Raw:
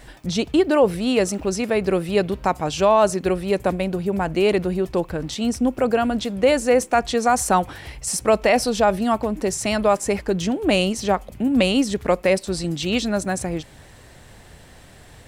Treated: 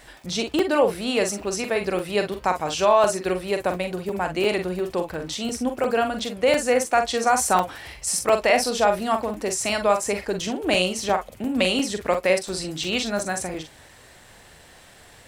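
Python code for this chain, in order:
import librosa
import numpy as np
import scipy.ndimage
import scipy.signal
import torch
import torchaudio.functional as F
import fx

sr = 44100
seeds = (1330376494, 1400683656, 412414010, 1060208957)

p1 = fx.low_shelf(x, sr, hz=350.0, db=-10.5)
p2 = p1 + fx.room_early_taps(p1, sr, ms=(44, 57), db=(-7.0, -16.5), dry=0)
y = fx.buffer_crackle(p2, sr, first_s=0.59, period_s=0.35, block=128, kind='zero')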